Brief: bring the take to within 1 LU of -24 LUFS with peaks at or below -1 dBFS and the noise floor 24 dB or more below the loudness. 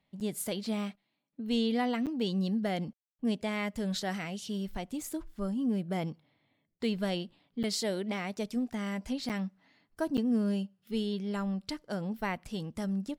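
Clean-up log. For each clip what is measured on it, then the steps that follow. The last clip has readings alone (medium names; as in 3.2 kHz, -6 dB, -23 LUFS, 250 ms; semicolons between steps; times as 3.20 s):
dropouts 5; longest dropout 7.8 ms; loudness -34.0 LUFS; peak level -18.0 dBFS; loudness target -24.0 LUFS
-> interpolate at 0.20/2.06/7.63/9.29/10.17 s, 7.8 ms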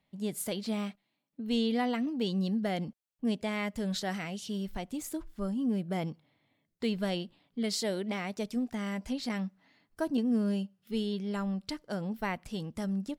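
dropouts 0; loudness -34.0 LUFS; peak level -18.0 dBFS; loudness target -24.0 LUFS
-> trim +10 dB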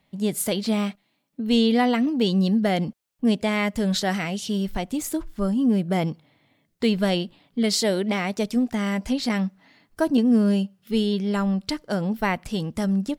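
loudness -24.0 LUFS; peak level -8.0 dBFS; noise floor -70 dBFS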